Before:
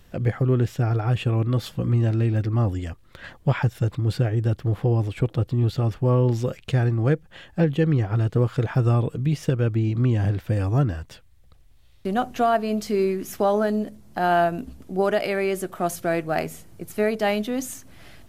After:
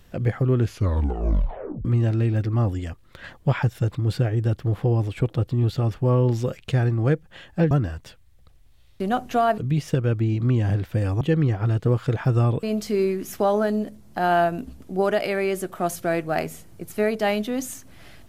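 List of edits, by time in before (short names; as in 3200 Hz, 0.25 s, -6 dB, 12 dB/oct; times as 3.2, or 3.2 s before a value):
0.58 tape stop 1.27 s
7.71–9.13 swap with 10.76–12.63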